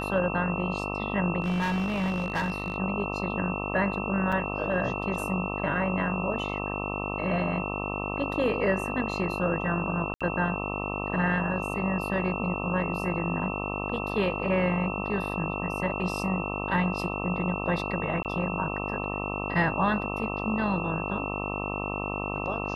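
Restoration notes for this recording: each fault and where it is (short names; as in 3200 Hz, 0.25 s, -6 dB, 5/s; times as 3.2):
buzz 50 Hz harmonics 26 -33 dBFS
tone 2700 Hz -35 dBFS
1.42–2.76 clipped -24 dBFS
4.32–4.33 gap 5 ms
10.14–10.21 gap 66 ms
18.23–18.25 gap 18 ms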